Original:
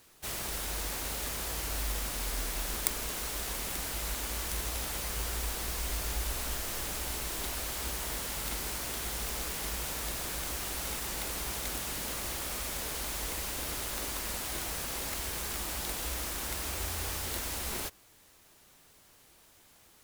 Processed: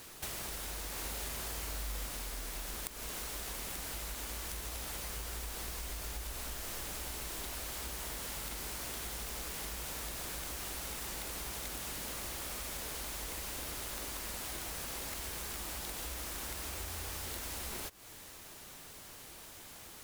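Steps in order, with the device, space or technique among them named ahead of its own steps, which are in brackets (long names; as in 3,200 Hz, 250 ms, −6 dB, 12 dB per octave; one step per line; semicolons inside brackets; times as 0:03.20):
serial compression, peaks first (downward compressor 6 to 1, threshold −44 dBFS, peak gain reduction 20 dB; downward compressor 1.5 to 1, threshold −55 dBFS, peak gain reduction 6 dB)
0:00.92–0:02.06: double-tracking delay 42 ms −6 dB
level +9.5 dB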